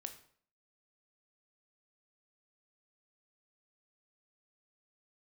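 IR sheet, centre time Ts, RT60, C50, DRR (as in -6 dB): 11 ms, 0.55 s, 11.5 dB, 6.5 dB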